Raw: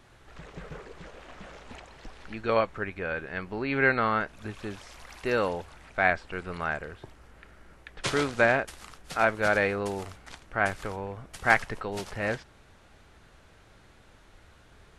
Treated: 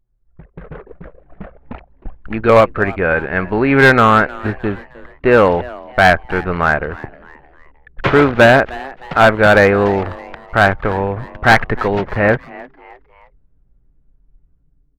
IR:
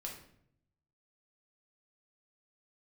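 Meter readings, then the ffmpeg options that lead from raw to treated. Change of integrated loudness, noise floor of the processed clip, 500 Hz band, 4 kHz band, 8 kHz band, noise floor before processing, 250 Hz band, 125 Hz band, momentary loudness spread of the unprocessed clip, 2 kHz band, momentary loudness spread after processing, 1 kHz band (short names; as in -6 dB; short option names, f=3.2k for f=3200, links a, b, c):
+15.0 dB, -57 dBFS, +16.0 dB, +14.0 dB, n/a, -57 dBFS, +17.0 dB, +18.0 dB, 23 LU, +13.0 dB, 13 LU, +15.0 dB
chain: -filter_complex "[0:a]lowpass=3.4k,agate=range=-7dB:threshold=-45dB:ratio=16:detection=peak,asoftclip=type=tanh:threshold=-13.5dB,acrossover=split=2500[a][b];[b]acompressor=threshold=-55dB:ratio=4:attack=1:release=60[c];[a][c]amix=inputs=2:normalize=0,anlmdn=0.158,volume=20dB,asoftclip=hard,volume=-20dB,dynaudnorm=f=690:g=3:m=10dB,asplit=4[d][e][f][g];[e]adelay=309,afreqshift=130,volume=-20.5dB[h];[f]adelay=618,afreqshift=260,volume=-28dB[i];[g]adelay=927,afreqshift=390,volume=-35.6dB[j];[d][h][i][j]amix=inputs=4:normalize=0,volume=7.5dB"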